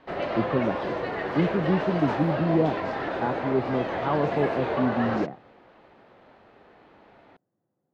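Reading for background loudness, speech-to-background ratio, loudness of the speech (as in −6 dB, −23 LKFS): −29.5 LKFS, 2.0 dB, −27.5 LKFS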